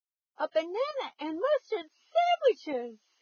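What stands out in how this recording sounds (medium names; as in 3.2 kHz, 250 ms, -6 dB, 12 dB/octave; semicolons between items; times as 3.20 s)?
tremolo saw up 1.1 Hz, depth 60%; a quantiser's noise floor 12-bit, dither none; Vorbis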